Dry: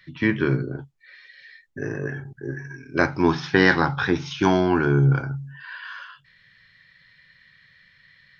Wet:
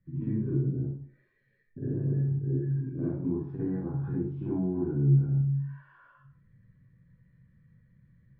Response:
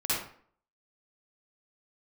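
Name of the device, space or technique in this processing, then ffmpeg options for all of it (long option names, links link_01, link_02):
television next door: -filter_complex "[0:a]acompressor=threshold=-33dB:ratio=5,lowpass=270[link_01];[1:a]atrim=start_sample=2205[link_02];[link_01][link_02]afir=irnorm=-1:irlink=0"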